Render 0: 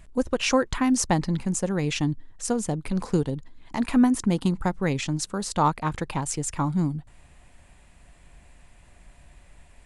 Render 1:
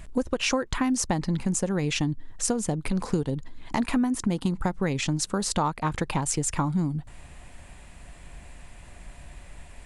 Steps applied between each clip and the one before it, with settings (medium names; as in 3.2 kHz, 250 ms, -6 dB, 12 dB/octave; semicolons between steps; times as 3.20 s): compression 5:1, threshold -30 dBFS, peak gain reduction 14 dB; trim +7 dB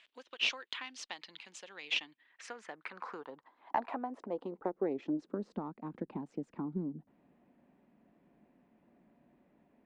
band-pass sweep 3.2 kHz -> 220 Hz, 1.82–5.60 s; Chebyshev shaper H 2 -13 dB, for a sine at -17.5 dBFS; three-band isolator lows -22 dB, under 240 Hz, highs -16 dB, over 5.4 kHz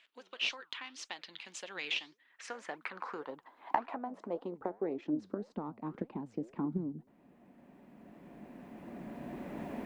recorder AGC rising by 9.5 dB/s; flange 1.8 Hz, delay 2.7 ms, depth 8.3 ms, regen +84%; trim +2 dB